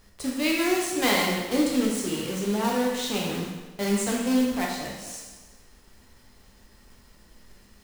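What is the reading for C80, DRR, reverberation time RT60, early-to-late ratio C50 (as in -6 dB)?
4.0 dB, -2.0 dB, 1.2 s, 2.0 dB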